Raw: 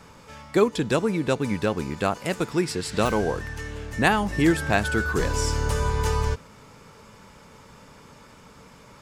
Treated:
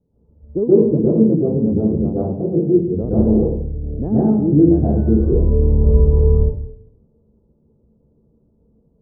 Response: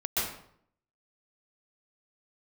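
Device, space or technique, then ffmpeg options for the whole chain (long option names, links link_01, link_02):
next room: -filter_complex "[0:a]asettb=1/sr,asplit=3[link_01][link_02][link_03];[link_01]atrim=end=3.934[link_04];[link_02]atrim=start=3.93:end=4.54,asetpts=PTS-STARTPTS,afade=type=in:duration=0.004:curve=qsin,afade=type=out:start_time=0.606:duration=0.004:curve=qsin,highpass=frequency=100:width=0.5412,highpass=frequency=100:width=1.3066[link_05];[link_03]atrim=start=4.536[link_06];[link_04][link_05]acrossfade=duration=0.004:curve1=hsin:curve2=qsin[link_07];[link_07][link_06]acrossfade=duration=0.004:curve1=qsin:curve2=hsin,afwtdn=0.0398,lowpass=frequency=470:width=0.5412,lowpass=frequency=470:width=1.3066[link_08];[1:a]atrim=start_sample=2205[link_09];[link_08][link_09]afir=irnorm=-1:irlink=0,bandreject=frequency=1100:width=21,volume=1.5dB"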